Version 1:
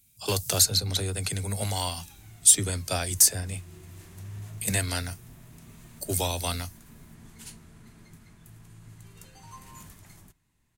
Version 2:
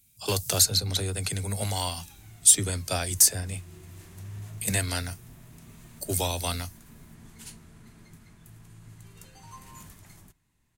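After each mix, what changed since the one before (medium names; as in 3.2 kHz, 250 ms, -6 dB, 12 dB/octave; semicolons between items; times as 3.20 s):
no change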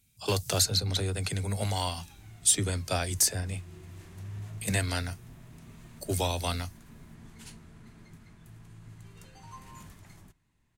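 master: add treble shelf 7 kHz -10.5 dB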